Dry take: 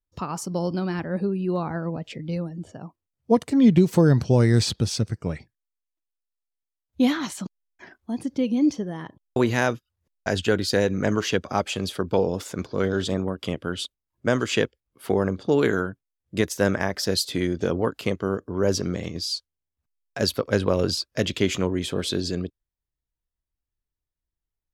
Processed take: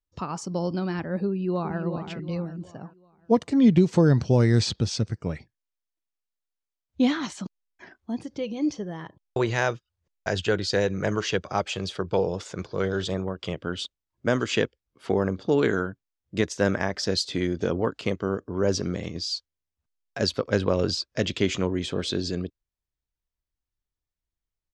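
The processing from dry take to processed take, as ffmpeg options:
ffmpeg -i in.wav -filter_complex "[0:a]asplit=2[link_01][link_02];[link_02]afade=type=in:start_time=1.27:duration=0.01,afade=type=out:start_time=1.82:duration=0.01,aecho=0:1:370|740|1110|1480|1850:0.398107|0.159243|0.0636971|0.0254789|0.0101915[link_03];[link_01][link_03]amix=inputs=2:normalize=0,asettb=1/sr,asplit=3[link_04][link_05][link_06];[link_04]atrim=end=8.214[link_07];[link_05]atrim=start=8.21:end=13.58,asetpts=PTS-STARTPTS,afade=type=in:duration=0.004:curve=qsin,afade=type=out:start_time=5.366:duration=0.004:curve=qsin,equalizer=frequency=250:width=4.8:gain=-13[link_08];[link_06]atrim=start=13.576[link_09];[link_07][link_08]acrossfade=duration=0.004:curve1=hsin:curve2=qsin[link_10];[link_10][link_09]acrossfade=duration=0.004:curve1=qsin:curve2=hsin,lowpass=frequency=7300:width=0.5412,lowpass=frequency=7300:width=1.3066,volume=-1.5dB" out.wav

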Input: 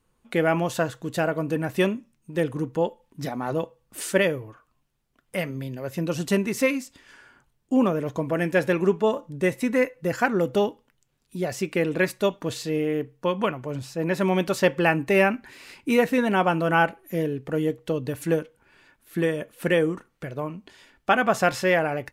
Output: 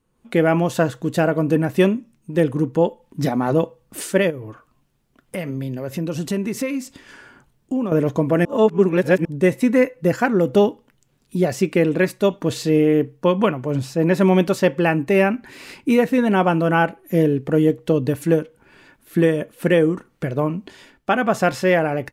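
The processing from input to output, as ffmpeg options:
ffmpeg -i in.wav -filter_complex "[0:a]asettb=1/sr,asplit=3[link_01][link_02][link_03];[link_01]atrim=end=4.304[link_04];[link_02]atrim=start=4.3:end=7.92,asetpts=PTS-STARTPTS,afade=type=in:duration=0.004:curve=qsin,afade=type=out:start_time=3.616:duration=0.004:curve=qsin,acompressor=threshold=-36dB:ratio=2.5:attack=3.2:release=140:knee=1:detection=peak[link_05];[link_03]atrim=start=7.916[link_06];[link_04][link_05]acrossfade=duration=0.004:curve1=hsin:curve2=qsin[link_07];[link_07][link_06]acrossfade=duration=0.004:curve1=qsin:curve2=hsin,asplit=3[link_08][link_09][link_10];[link_08]atrim=end=8.452[link_11];[link_09]atrim=start=8.448:end=9.252,asetpts=PTS-STARTPTS,areverse[link_12];[link_10]atrim=start=9.248[link_13];[link_11][link_12]acrossfade=duration=0.004:curve1=hsin:curve2=hsin[link_14];[link_14][link_13]acrossfade=duration=0.004:curve1=hsin:curve2=hsin,equalizer=frequency=230:width_type=o:width=2.7:gain=6,dynaudnorm=framelen=120:gausssize=3:maxgain=9.5dB,volume=-3.5dB" out.wav

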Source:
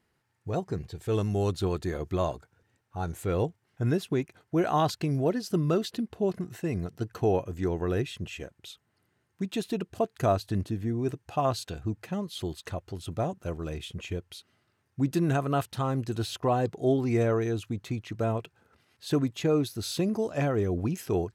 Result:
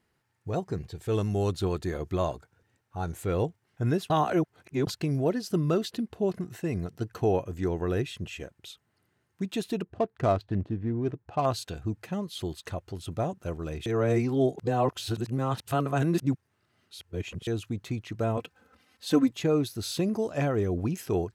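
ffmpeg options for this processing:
ffmpeg -i in.wav -filter_complex "[0:a]asettb=1/sr,asplit=3[link_01][link_02][link_03];[link_01]atrim=end=9.824[link_04];[link_02]atrim=start=9.82:end=11.46,asetpts=PTS-STARTPTS,afade=type=in:duration=0.004:curve=qsin,afade=type=out:start_time=1.636:duration=0.004:curve=qsin,adynamicsmooth=sensitivity=5.5:basefreq=1300[link_05];[link_03]atrim=start=11.456[link_06];[link_04][link_05]acrossfade=duration=0.004:curve1=hsin:curve2=qsin[link_07];[link_07][link_06]acrossfade=duration=0.004:curve1=qsin:curve2=hsin,asettb=1/sr,asplit=3[link_08][link_09][link_10];[link_08]atrim=end=18.374[link_11];[link_09]atrim=start=18.37:end=19.32,asetpts=PTS-STARTPTS,afade=type=in:duration=0.004:curve=qsin,afade=type=out:start_time=0.946:duration=0.004:curve=qsin,aecho=1:1:3.9:1,atrim=end_sample=41895[link_12];[link_10]atrim=start=19.316[link_13];[link_11][link_12]acrossfade=duration=0.004:curve1=hsin:curve2=qsin[link_14];[link_14][link_13]acrossfade=duration=0.004:curve1=qsin:curve2=hsin,asplit=5[link_15][link_16][link_17][link_18][link_19];[link_15]atrim=end=4.102[link_20];[link_16]atrim=start=4.098:end=4.872,asetpts=PTS-STARTPTS,areverse[link_21];[link_17]atrim=start=4.868:end=13.862[link_22];[link_18]atrim=start=13.858:end=17.472,asetpts=PTS-STARTPTS,areverse[link_23];[link_19]atrim=start=17.468[link_24];[link_20][link_21]acrossfade=duration=0.004:curve1=hsin:curve2=hsin[link_25];[link_25][link_22]acrossfade=duration=0.004:curve1=hsin:curve2=hsin[link_26];[link_26][link_23]acrossfade=duration=0.004:curve1=hsin:curve2=hsin[link_27];[link_27][link_24]acrossfade=duration=0.004:curve1=hsin:curve2=hsin" out.wav

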